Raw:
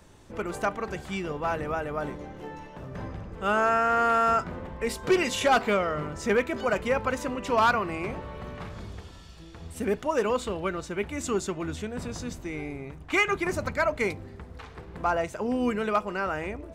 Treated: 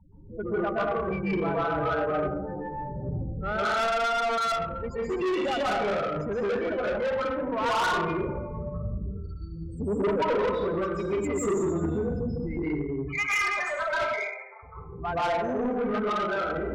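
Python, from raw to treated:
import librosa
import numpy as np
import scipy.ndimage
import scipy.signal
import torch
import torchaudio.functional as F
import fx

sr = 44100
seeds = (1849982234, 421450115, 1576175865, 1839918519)

y = fx.highpass(x, sr, hz=630.0, slope=24, at=(13.0, 14.63))
y = fx.spec_topn(y, sr, count=8)
y = fx.rev_plate(y, sr, seeds[0], rt60_s=0.82, hf_ratio=0.95, predelay_ms=115, drr_db=-9.0)
y = 10.0 ** (-21.0 / 20.0) * np.tanh(y / 10.0 ** (-21.0 / 20.0))
y = fx.rider(y, sr, range_db=4, speed_s=2.0)
y = y * librosa.db_to_amplitude(-2.0)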